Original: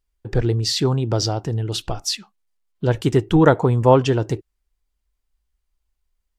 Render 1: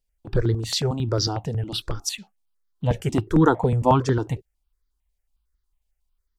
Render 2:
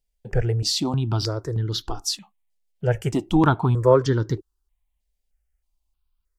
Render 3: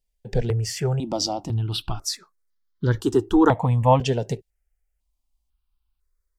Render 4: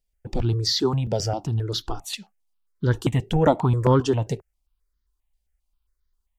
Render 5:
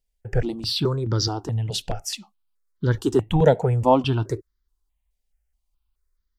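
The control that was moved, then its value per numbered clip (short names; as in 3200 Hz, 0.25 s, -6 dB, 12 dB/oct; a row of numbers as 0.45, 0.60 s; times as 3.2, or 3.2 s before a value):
step phaser, rate: 11, 3.2, 2, 7.5, 4.7 Hz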